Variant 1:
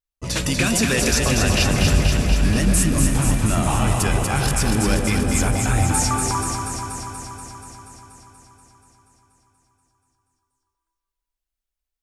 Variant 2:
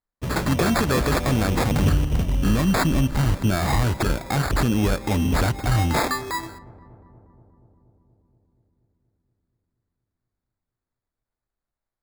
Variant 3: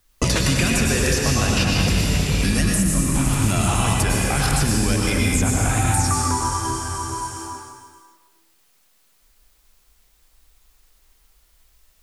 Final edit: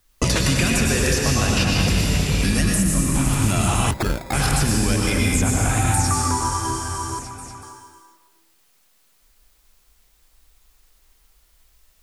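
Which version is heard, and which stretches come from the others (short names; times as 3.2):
3
3.91–4.33 from 2
7.19–7.63 from 1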